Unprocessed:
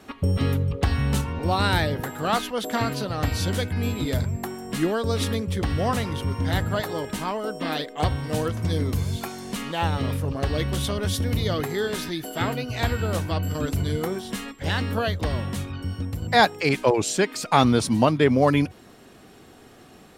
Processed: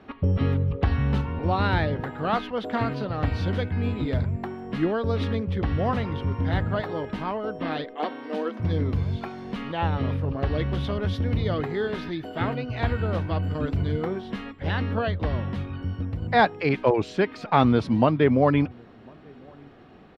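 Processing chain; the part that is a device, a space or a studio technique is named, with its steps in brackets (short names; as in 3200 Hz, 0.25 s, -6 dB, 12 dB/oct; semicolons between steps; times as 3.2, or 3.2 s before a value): shout across a valley (air absorption 320 m; outdoor echo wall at 180 m, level -29 dB); 7.94–8.6 Chebyshev high-pass 220 Hz, order 5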